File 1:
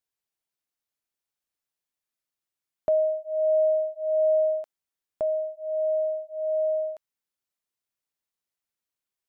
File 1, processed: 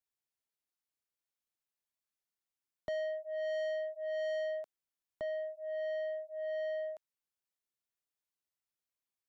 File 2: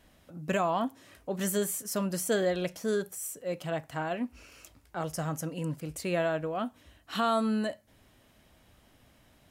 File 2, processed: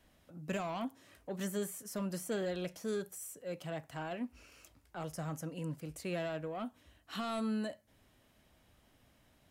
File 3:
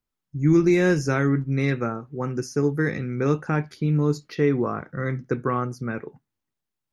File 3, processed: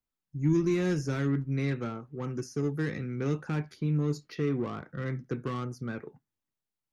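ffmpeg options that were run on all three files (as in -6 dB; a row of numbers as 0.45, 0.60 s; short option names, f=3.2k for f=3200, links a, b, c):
-filter_complex "[0:a]acrossover=split=360|2400[a][b][c];[b]asoftclip=type=tanh:threshold=-30.5dB[d];[c]alimiter=level_in=6dB:limit=-24dB:level=0:latency=1:release=185,volume=-6dB[e];[a][d][e]amix=inputs=3:normalize=0,volume=-6dB"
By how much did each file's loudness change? -12.0, -8.0, -7.5 LU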